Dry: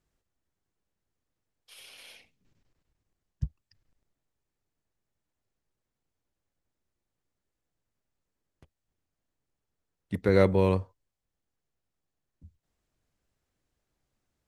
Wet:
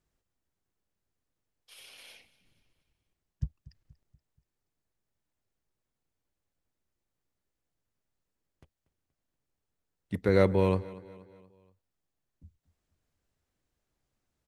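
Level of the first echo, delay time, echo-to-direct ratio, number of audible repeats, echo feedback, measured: -19.5 dB, 238 ms, -18.5 dB, 3, 49%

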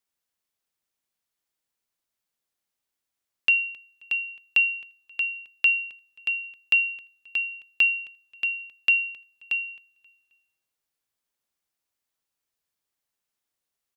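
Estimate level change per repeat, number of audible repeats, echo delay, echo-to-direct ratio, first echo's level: -8.0 dB, 2, 266 ms, -22.5 dB, -23.0 dB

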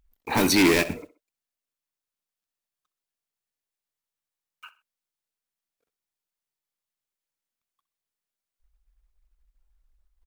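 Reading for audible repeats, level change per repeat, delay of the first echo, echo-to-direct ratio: 2, -8.0 dB, 64 ms, -16.5 dB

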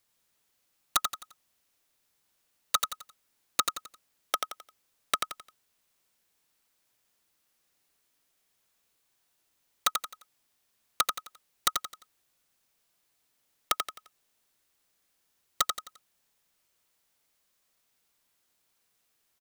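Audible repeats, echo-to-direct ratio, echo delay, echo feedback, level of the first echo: 4, -4.5 dB, 87 ms, 35%, -5.0 dB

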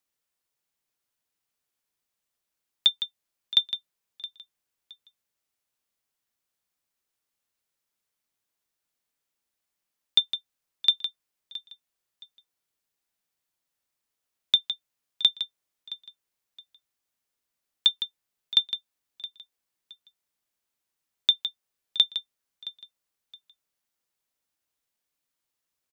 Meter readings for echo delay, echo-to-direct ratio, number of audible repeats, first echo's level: 669 ms, -16.5 dB, 2, -17.0 dB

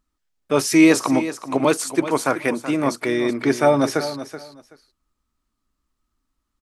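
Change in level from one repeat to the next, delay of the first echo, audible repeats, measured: -14.5 dB, 378 ms, 2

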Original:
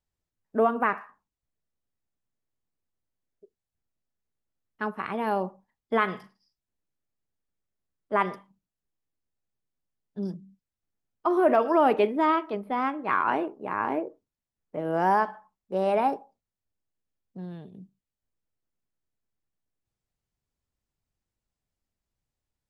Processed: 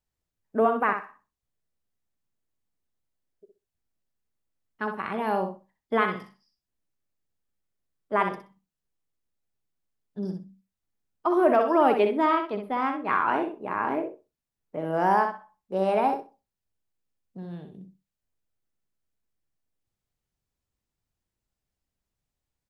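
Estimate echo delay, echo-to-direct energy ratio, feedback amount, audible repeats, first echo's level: 63 ms, -7.0 dB, 17%, 2, -7.0 dB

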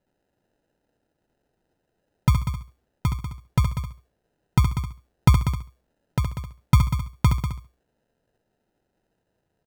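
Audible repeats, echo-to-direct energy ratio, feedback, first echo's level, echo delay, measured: 5, -4.5 dB, no regular repeats, -7.0 dB, 69 ms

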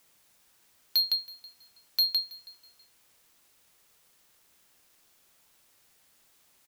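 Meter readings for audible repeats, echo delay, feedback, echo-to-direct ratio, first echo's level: 2, 324 ms, 25%, -21.0 dB, -21.5 dB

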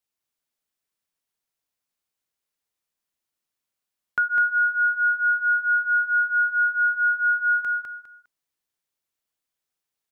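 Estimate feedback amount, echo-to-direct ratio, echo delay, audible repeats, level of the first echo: 25%, -3.5 dB, 203 ms, 3, -4.0 dB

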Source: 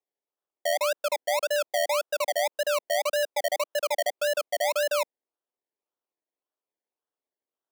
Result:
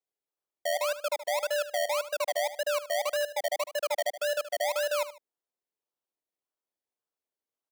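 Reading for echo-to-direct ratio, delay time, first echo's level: -13.0 dB, 75 ms, -13.5 dB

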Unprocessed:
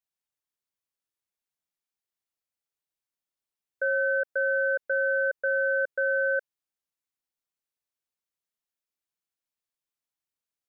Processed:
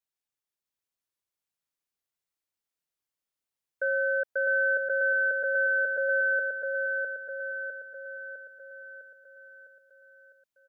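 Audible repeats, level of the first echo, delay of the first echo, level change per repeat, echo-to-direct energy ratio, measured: 6, -3.5 dB, 655 ms, -5.5 dB, -2.0 dB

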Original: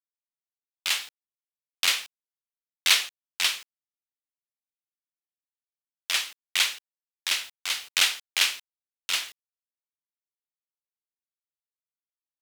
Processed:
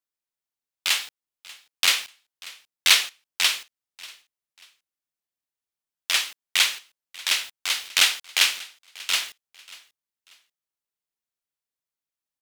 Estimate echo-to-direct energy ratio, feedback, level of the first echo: -20.5 dB, 31%, -21.0 dB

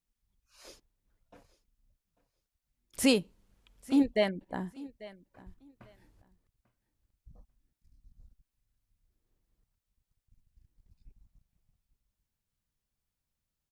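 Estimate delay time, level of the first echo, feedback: 843 ms, -19.5 dB, 19%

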